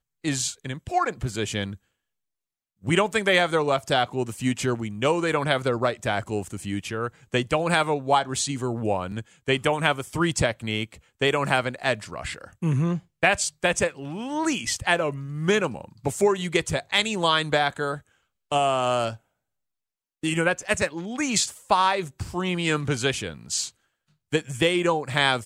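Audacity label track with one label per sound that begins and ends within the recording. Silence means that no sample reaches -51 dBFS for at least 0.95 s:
2.820000	19.170000	sound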